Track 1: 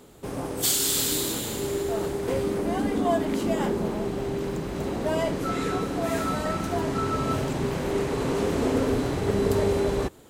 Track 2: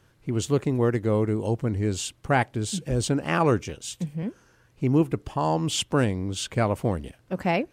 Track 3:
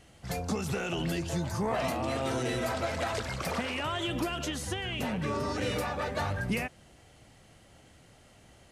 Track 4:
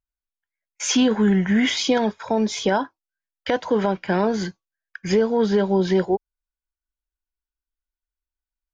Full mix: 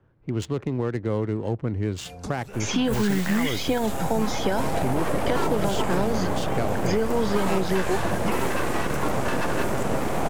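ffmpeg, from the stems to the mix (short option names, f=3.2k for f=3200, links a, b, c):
-filter_complex "[0:a]equalizer=f=3.8k:t=o:w=1:g=-14,dynaudnorm=f=300:g=13:m=11.5dB,aeval=exprs='abs(val(0))':c=same,adelay=2300,volume=-1.5dB[a];[1:a]alimiter=limit=-16dB:level=0:latency=1:release=135,adynamicsmooth=sensitivity=7.5:basefreq=1.3k,volume=0dB,asplit=2[b][c];[2:a]adelay=1750,volume=1.5dB[d];[3:a]adelay=1800,volume=0dB[e];[c]apad=whole_len=461583[f];[d][f]sidechaincompress=threshold=-41dB:ratio=10:attack=27:release=297[g];[a][b][g][e]amix=inputs=4:normalize=0,acrossover=split=110|650|3200|6400[h][i][j][k][l];[h]acompressor=threshold=-26dB:ratio=4[m];[i]acompressor=threshold=-23dB:ratio=4[n];[j]acompressor=threshold=-30dB:ratio=4[o];[k]acompressor=threshold=-41dB:ratio=4[p];[l]acompressor=threshold=-41dB:ratio=4[q];[m][n][o][p][q]amix=inputs=5:normalize=0"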